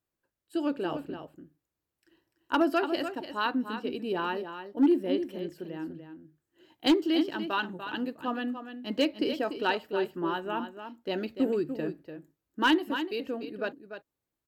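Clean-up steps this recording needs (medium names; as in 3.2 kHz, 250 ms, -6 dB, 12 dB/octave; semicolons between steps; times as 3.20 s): clip repair -16.5 dBFS; inverse comb 293 ms -9.5 dB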